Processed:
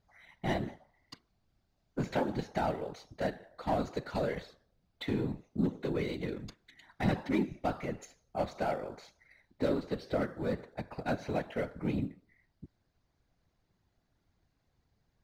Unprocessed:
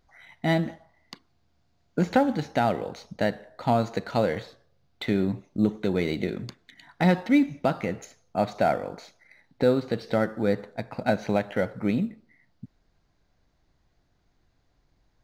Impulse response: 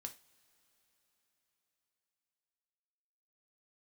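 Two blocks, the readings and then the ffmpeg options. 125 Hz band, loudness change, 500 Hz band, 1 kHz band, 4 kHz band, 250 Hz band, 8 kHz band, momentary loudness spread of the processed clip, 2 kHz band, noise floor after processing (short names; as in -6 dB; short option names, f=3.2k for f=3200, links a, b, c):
-7.5 dB, -9.0 dB, -8.5 dB, -8.5 dB, -8.0 dB, -9.0 dB, n/a, 11 LU, -9.0 dB, -77 dBFS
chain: -af "aeval=exprs='0.316*(cos(1*acos(clip(val(0)/0.316,-1,1)))-cos(1*PI/2))+0.0282*(cos(5*acos(clip(val(0)/0.316,-1,1)))-cos(5*PI/2))':c=same,afftfilt=real='hypot(re,im)*cos(2*PI*random(0))':imag='hypot(re,im)*sin(2*PI*random(1))':win_size=512:overlap=0.75,volume=-4dB"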